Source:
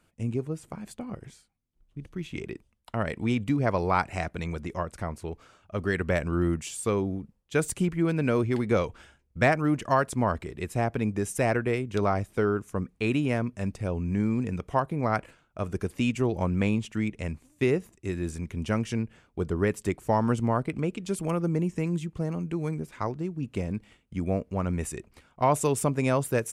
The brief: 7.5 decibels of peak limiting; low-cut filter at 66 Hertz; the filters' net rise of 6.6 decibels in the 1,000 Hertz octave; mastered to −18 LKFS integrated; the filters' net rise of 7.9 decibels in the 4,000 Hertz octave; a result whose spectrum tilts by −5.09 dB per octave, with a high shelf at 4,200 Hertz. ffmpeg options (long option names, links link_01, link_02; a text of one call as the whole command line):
ffmpeg -i in.wav -af "highpass=66,equalizer=frequency=1000:width_type=o:gain=7.5,equalizer=frequency=4000:width_type=o:gain=6.5,highshelf=frequency=4200:gain=6.5,volume=9.5dB,alimiter=limit=-2.5dB:level=0:latency=1" out.wav